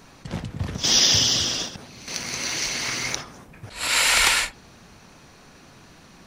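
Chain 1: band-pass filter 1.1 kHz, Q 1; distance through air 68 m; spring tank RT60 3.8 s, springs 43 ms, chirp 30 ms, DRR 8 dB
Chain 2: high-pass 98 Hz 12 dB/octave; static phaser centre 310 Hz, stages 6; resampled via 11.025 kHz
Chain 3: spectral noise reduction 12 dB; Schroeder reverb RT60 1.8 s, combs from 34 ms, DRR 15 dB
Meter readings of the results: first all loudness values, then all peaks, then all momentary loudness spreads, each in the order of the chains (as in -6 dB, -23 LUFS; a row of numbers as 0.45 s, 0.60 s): -30.5 LUFS, -24.5 LUFS, -20.5 LUFS; -11.0 dBFS, -9.0 dBFS, -5.0 dBFS; 20 LU, 17 LU, 22 LU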